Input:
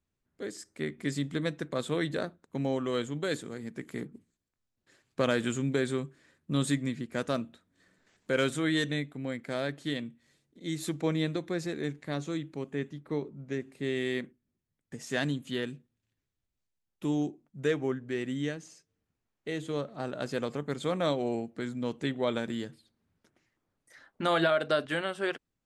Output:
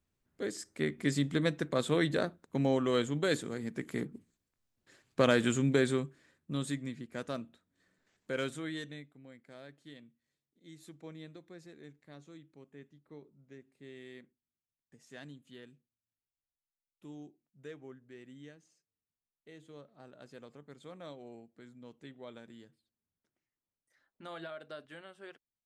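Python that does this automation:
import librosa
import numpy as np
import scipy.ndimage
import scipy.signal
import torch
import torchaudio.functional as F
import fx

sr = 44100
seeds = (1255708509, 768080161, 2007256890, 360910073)

y = fx.gain(x, sr, db=fx.line((5.85, 1.5), (6.64, -7.5), (8.43, -7.5), (9.25, -18.5)))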